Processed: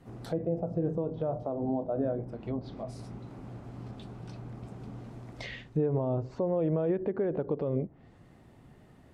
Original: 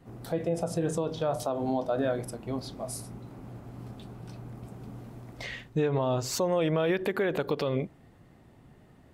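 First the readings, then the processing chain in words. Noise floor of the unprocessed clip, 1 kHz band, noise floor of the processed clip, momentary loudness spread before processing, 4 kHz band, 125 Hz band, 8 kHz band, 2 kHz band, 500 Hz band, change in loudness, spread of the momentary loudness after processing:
-57 dBFS, -6.5 dB, -57 dBFS, 17 LU, -12.0 dB, 0.0 dB, under -20 dB, -11.0 dB, -2.5 dB, -2.5 dB, 15 LU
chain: treble ducked by the level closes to 840 Hz, closed at -28 dBFS; dynamic EQ 1200 Hz, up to -5 dB, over -46 dBFS, Q 0.7

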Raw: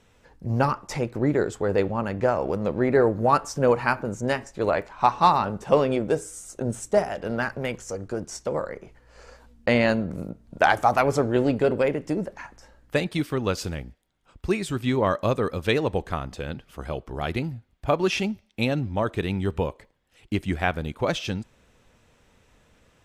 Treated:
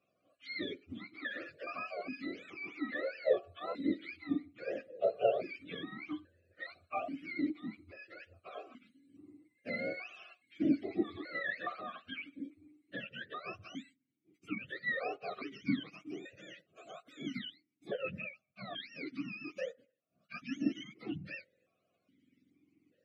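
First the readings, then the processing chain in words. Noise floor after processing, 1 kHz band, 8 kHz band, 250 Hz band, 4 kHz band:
-80 dBFS, -20.5 dB, under -25 dB, -11.5 dB, -12.5 dB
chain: spectrum mirrored in octaves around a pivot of 700 Hz; Chebyshev band-stop 630–1300 Hz, order 2; vowel sequencer 2.4 Hz; gain +2 dB

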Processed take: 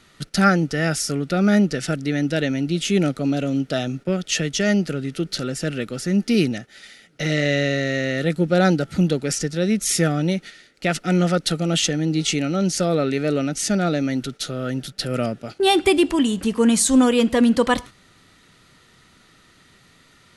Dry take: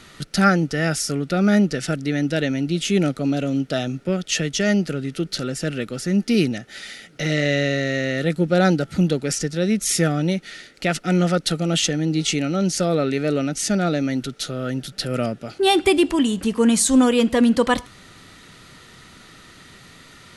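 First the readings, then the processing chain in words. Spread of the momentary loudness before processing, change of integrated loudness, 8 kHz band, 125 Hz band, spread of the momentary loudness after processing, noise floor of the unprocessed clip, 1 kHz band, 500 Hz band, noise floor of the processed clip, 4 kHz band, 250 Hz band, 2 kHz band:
9 LU, 0.0 dB, 0.0 dB, 0.0 dB, 9 LU, -47 dBFS, 0.0 dB, 0.0 dB, -54 dBFS, 0.0 dB, 0.0 dB, 0.0 dB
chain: gate -34 dBFS, range -8 dB

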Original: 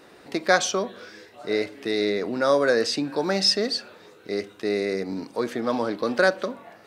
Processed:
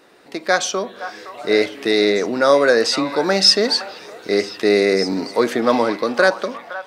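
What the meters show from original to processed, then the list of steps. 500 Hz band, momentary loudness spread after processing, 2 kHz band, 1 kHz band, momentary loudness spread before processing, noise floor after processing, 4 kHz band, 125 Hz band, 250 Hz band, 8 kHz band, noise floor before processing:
+7.0 dB, 16 LU, +6.5 dB, +6.5 dB, 12 LU, -43 dBFS, +8.0 dB, +4.0 dB, +6.5 dB, +6.0 dB, -51 dBFS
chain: bell 62 Hz -9 dB 2.9 oct; AGC gain up to 12 dB; on a send: delay with a stepping band-pass 0.515 s, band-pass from 980 Hz, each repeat 1.4 oct, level -8 dB

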